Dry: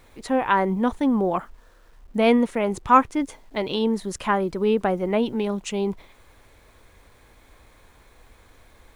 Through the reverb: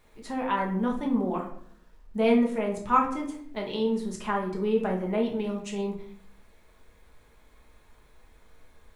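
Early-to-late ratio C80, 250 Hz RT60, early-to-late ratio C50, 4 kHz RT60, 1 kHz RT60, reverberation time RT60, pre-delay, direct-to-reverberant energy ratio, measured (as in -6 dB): 11.5 dB, 0.85 s, 7.0 dB, 0.40 s, 0.60 s, 0.60 s, 5 ms, -1.0 dB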